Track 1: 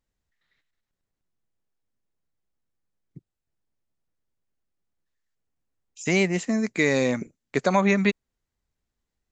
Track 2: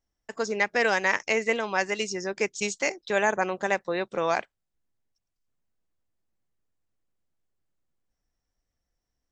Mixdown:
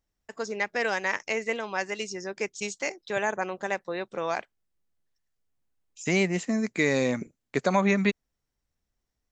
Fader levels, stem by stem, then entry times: -2.5, -4.0 dB; 0.00, 0.00 s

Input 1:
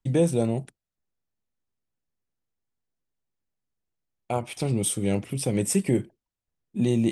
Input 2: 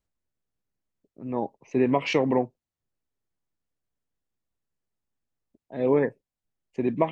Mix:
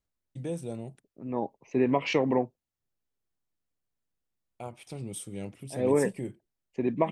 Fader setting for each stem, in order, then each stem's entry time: -13.0, -2.5 dB; 0.30, 0.00 s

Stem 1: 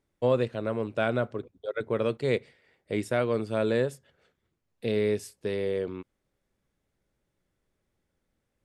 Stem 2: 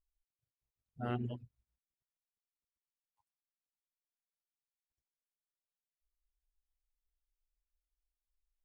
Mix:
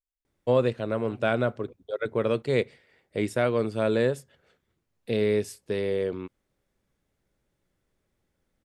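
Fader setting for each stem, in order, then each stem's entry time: +2.0, -10.0 dB; 0.25, 0.00 s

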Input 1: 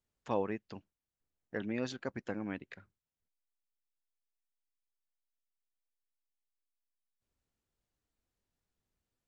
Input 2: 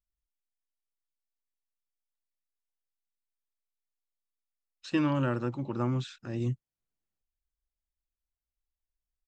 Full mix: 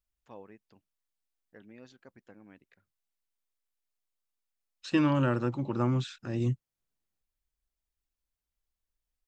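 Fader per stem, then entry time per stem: -15.5, +2.0 dB; 0.00, 0.00 s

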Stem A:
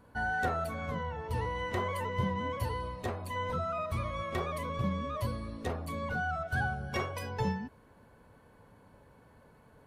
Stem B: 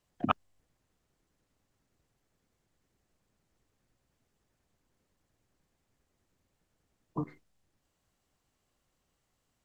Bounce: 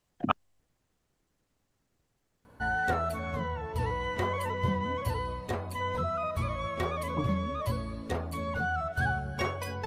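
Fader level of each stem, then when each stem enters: +2.5, +1.0 dB; 2.45, 0.00 s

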